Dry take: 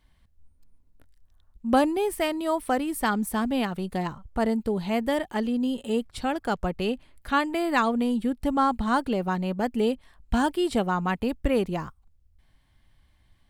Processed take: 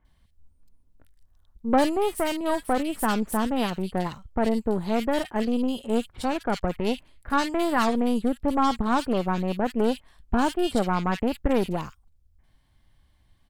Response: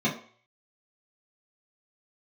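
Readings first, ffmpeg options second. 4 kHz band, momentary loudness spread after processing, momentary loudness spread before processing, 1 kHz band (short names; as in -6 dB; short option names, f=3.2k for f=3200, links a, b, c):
+1.0 dB, 6 LU, 6 LU, +0.5 dB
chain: -filter_complex "[0:a]aeval=exprs='0.355*(cos(1*acos(clip(val(0)/0.355,-1,1)))-cos(1*PI/2))+0.0355*(cos(8*acos(clip(val(0)/0.355,-1,1)))-cos(8*PI/2))':c=same,acrossover=split=2100[a][b];[b]adelay=50[c];[a][c]amix=inputs=2:normalize=0"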